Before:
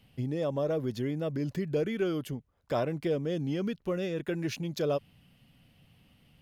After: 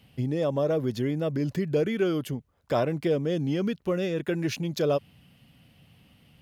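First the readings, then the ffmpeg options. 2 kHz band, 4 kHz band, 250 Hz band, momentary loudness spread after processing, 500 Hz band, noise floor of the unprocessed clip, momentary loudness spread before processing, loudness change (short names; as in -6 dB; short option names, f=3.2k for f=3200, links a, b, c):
+4.5 dB, +4.5 dB, +4.5 dB, 4 LU, +4.5 dB, -68 dBFS, 4 LU, +4.5 dB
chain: -af "highpass=48,volume=4.5dB"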